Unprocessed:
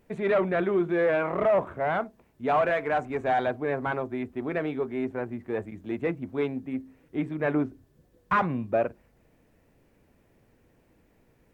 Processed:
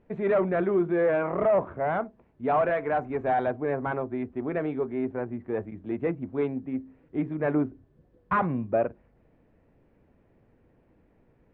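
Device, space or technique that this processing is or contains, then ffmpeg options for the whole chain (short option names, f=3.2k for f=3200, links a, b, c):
phone in a pocket: -af "lowpass=3.5k,highshelf=f=2.3k:g=-11.5,volume=1dB"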